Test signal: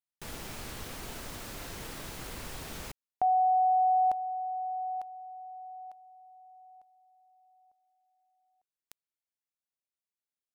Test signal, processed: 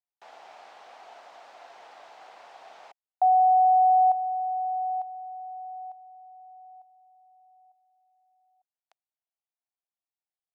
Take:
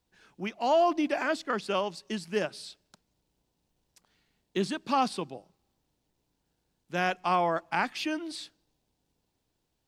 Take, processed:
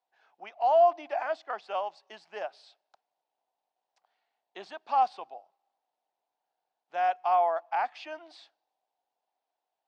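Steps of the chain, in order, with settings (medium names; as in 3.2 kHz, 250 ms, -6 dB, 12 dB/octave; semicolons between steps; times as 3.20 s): resonant high-pass 730 Hz, resonance Q 4.9; distance through air 150 m; trim -7.5 dB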